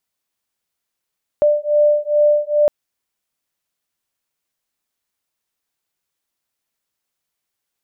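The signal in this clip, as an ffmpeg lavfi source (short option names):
-f lavfi -i "aevalsrc='0.178*(sin(2*PI*592*t)+sin(2*PI*594.4*t))':d=1.26:s=44100"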